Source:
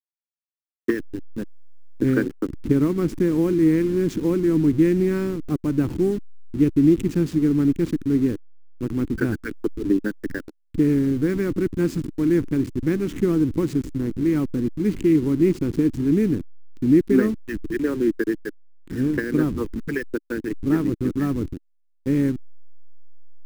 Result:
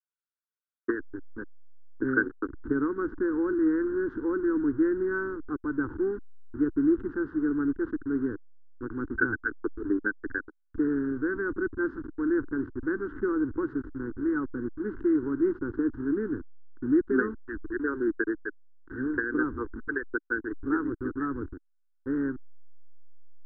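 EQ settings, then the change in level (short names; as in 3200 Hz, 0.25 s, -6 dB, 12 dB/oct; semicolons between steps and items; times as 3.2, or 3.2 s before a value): ladder low-pass 1600 Hz, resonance 80%; bell 700 Hz -4 dB 0.21 oct; fixed phaser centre 630 Hz, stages 6; +6.0 dB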